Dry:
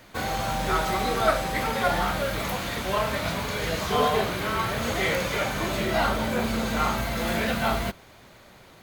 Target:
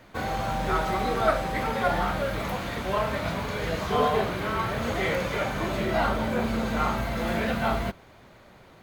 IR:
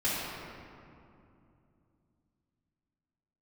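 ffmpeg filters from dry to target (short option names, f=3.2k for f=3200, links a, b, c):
-af "highshelf=f=3.1k:g=-9.5"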